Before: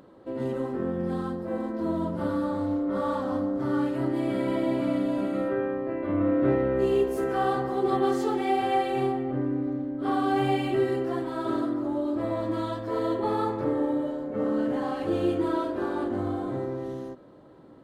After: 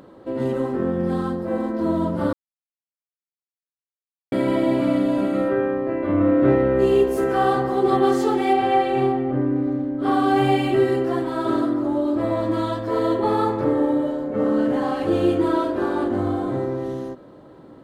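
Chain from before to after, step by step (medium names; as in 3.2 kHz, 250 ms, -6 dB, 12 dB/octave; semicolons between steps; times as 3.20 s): 2.33–4.32 s: mute; 8.53–9.56 s: low-pass 3.6 kHz 6 dB/octave; trim +6.5 dB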